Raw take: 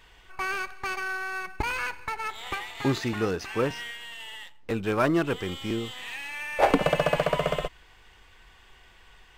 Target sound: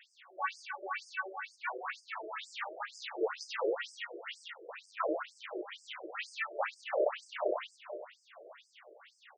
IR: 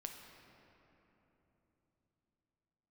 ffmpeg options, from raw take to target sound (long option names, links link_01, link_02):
-filter_complex "[0:a]aemphasis=mode=reproduction:type=bsi,bandreject=frequency=920:width=11,flanger=delay=8.4:depth=4.9:regen=-42:speed=1.4:shape=sinusoidal,asplit=2[link_01][link_02];[link_02]asetrate=33038,aresample=44100,atempo=1.33484,volume=-3dB[link_03];[link_01][link_03]amix=inputs=2:normalize=0,highshelf=frequency=8400:gain=8.5,aecho=1:1:96:0.631,alimiter=limit=-21dB:level=0:latency=1:release=70,asplit=2[link_04][link_05];[1:a]atrim=start_sample=2205[link_06];[link_05][link_06]afir=irnorm=-1:irlink=0,volume=4.5dB[link_07];[link_04][link_07]amix=inputs=2:normalize=0,acrossover=split=140|3000[link_08][link_09][link_10];[link_08]acompressor=threshold=-25dB:ratio=6[link_11];[link_11][link_09][link_10]amix=inputs=3:normalize=0,asplit=2[link_12][link_13];[link_13]aeval=exprs='0.0794*(abs(mod(val(0)/0.0794+3,4)-2)-1)':channel_layout=same,volume=-8dB[link_14];[link_12][link_14]amix=inputs=2:normalize=0,afftfilt=real='re*between(b*sr/1024,460*pow(6800/460,0.5+0.5*sin(2*PI*2.1*pts/sr))/1.41,460*pow(6800/460,0.5+0.5*sin(2*PI*2.1*pts/sr))*1.41)':imag='im*between(b*sr/1024,460*pow(6800/460,0.5+0.5*sin(2*PI*2.1*pts/sr))/1.41,460*pow(6800/460,0.5+0.5*sin(2*PI*2.1*pts/sr))*1.41)':win_size=1024:overlap=0.75,volume=-2.5dB"